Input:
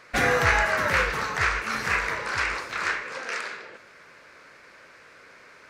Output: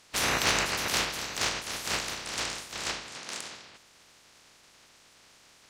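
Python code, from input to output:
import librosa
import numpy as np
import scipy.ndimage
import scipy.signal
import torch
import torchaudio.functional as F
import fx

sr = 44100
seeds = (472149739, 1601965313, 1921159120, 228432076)

y = fx.spec_clip(x, sr, under_db=26)
y = fx.cheby_harmonics(y, sr, harmonics=(7,), levels_db=(-27,), full_scale_db=-6.0)
y = y * 10.0 ** (-4.0 / 20.0)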